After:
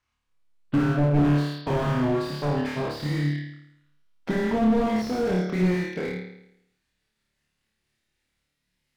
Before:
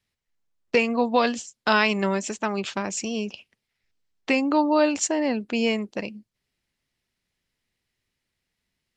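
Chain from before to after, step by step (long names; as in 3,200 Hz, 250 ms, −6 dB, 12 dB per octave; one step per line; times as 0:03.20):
pitch glide at a constant tempo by −10 semitones ending unshifted
flutter between parallel walls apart 4.7 metres, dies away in 0.77 s
slew-rate limiting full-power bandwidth 40 Hz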